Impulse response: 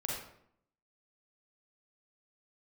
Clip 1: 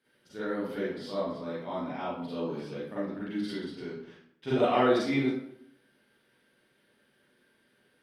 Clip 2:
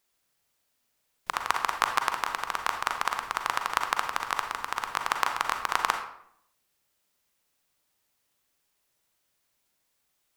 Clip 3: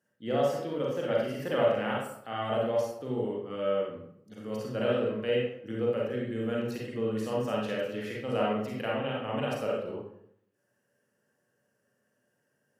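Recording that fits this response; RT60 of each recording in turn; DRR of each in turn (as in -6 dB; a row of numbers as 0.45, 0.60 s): 3; 0.70, 0.70, 0.70 s; -11.0, 4.5, -4.0 dB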